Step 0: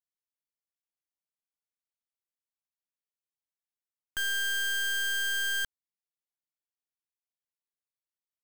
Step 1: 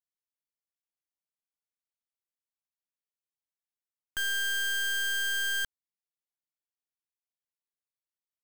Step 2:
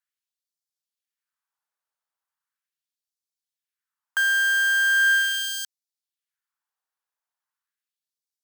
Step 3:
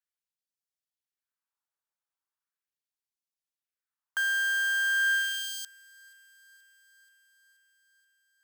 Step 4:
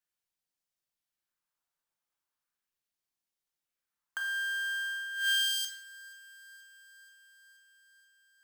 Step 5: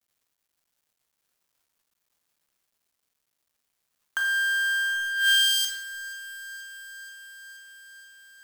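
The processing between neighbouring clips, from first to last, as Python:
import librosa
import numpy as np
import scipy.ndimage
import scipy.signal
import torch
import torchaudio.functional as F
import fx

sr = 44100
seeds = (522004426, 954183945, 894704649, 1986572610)

y1 = x
y2 = fx.cheby_harmonics(y1, sr, harmonics=(7,), levels_db=(-11,), full_scale_db=-29.0)
y2 = fx.band_shelf(y2, sr, hz=1200.0, db=8.5, octaves=1.3)
y2 = fx.filter_lfo_highpass(y2, sr, shape='sine', hz=0.39, low_hz=510.0, high_hz=4800.0, q=1.5)
y2 = F.gain(torch.from_numpy(y2), 3.0).numpy()
y3 = fx.echo_wet_highpass(y2, sr, ms=479, feedback_pct=67, hz=1800.0, wet_db=-24.0)
y3 = F.gain(torch.from_numpy(y3), -6.5).numpy()
y4 = fx.over_compress(y3, sr, threshold_db=-31.0, ratio=-0.5)
y4 = fx.room_shoebox(y4, sr, seeds[0], volume_m3=290.0, walls='mixed', distance_m=0.87)
y4 = F.gain(torch.from_numpy(y4), -3.5).numpy()
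y5 = fx.law_mismatch(y4, sr, coded='mu')
y5 = F.gain(torch.from_numpy(y5), 7.0).numpy()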